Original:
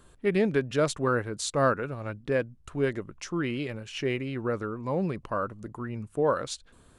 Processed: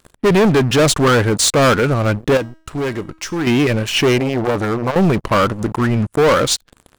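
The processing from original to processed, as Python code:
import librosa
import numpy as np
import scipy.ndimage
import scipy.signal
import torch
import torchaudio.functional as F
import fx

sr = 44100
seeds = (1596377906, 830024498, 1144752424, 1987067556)

y = fx.leveller(x, sr, passes=5)
y = fx.comb_fb(y, sr, f0_hz=320.0, decay_s=0.53, harmonics='all', damping=0.0, mix_pct=60, at=(2.37, 3.47))
y = fx.transformer_sat(y, sr, knee_hz=370.0, at=(4.18, 4.96))
y = y * 10.0 ** (3.0 / 20.0)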